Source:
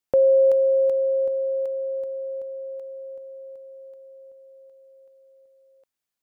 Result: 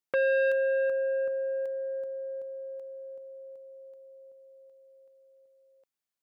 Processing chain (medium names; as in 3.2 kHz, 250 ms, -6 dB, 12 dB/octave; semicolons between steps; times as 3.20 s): high-pass 92 Hz 12 dB/octave; transformer saturation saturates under 980 Hz; trim -5.5 dB